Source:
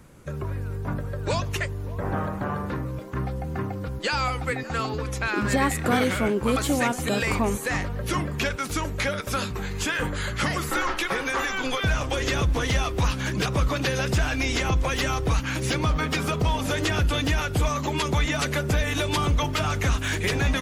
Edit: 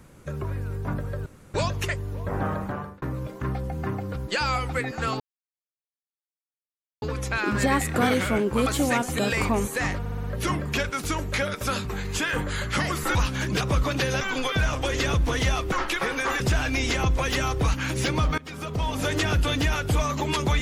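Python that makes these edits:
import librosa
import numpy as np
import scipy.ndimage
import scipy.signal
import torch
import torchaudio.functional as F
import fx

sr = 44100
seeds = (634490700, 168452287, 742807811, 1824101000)

y = fx.edit(x, sr, fx.insert_room_tone(at_s=1.26, length_s=0.28),
    fx.fade_out_span(start_s=2.35, length_s=0.39),
    fx.insert_silence(at_s=4.92, length_s=1.82),
    fx.stutter(start_s=7.9, slice_s=0.06, count=5),
    fx.swap(start_s=10.81, length_s=0.68, other_s=13.0, other_length_s=1.06),
    fx.fade_in_from(start_s=16.04, length_s=0.69, floor_db=-22.0), tone=tone)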